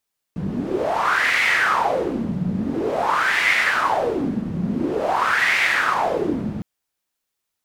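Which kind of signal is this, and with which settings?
wind-like swept noise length 6.26 s, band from 180 Hz, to 2100 Hz, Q 5.3, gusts 3, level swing 6 dB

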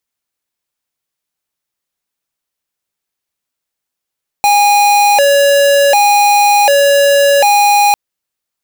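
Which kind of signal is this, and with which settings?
siren hi-lo 564–820 Hz 0.67/s square -8.5 dBFS 3.50 s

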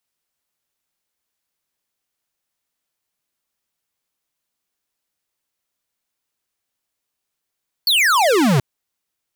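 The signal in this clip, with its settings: laser zap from 4600 Hz, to 120 Hz, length 0.73 s square, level -14.5 dB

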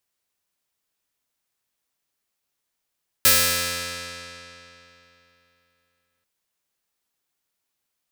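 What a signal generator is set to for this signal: plucked string F2, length 2.99 s, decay 3.22 s, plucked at 0.23, bright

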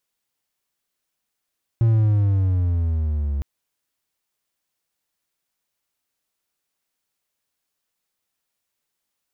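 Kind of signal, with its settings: gliding synth tone triangle, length 1.61 s, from 116 Hz, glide -9 st, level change -8 dB, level -11 dB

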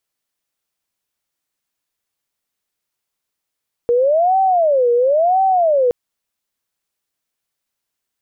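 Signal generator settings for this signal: siren wail 476–770 Hz 0.97/s sine -11 dBFS 2.02 s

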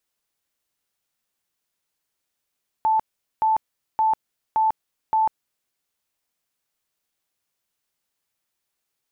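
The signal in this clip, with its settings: tone bursts 878 Hz, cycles 128, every 0.57 s, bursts 5, -16 dBFS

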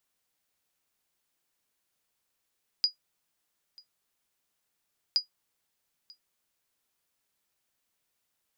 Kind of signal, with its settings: sonar ping 4900 Hz, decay 0.12 s, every 2.32 s, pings 2, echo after 0.94 s, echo -26 dB -15.5 dBFS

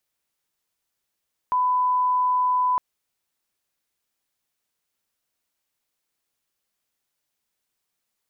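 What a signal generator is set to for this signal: line-up tone -18 dBFS 1.26 s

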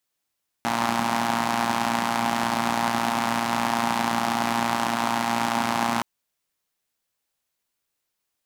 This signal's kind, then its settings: four-cylinder engine model, steady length 5.37 s, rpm 3500, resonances 240/820 Hz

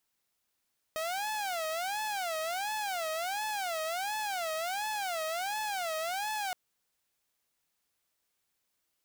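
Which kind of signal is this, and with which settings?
siren wail 630–863 Hz 1.4/s saw -29.5 dBFS 5.57 s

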